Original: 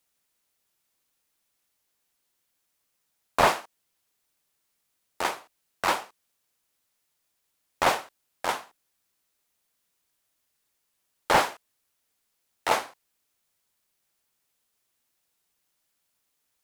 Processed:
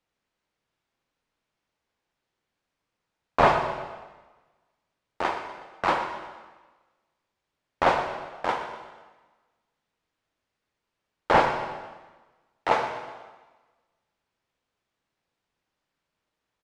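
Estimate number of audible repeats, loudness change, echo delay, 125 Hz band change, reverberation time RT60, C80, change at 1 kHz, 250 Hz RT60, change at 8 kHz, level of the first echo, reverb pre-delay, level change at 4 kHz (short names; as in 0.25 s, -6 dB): 3, +1.0 dB, 0.123 s, +5.5 dB, 1.3 s, 7.5 dB, +2.5 dB, 1.3 s, under -10 dB, -13.0 dB, 7 ms, -4.0 dB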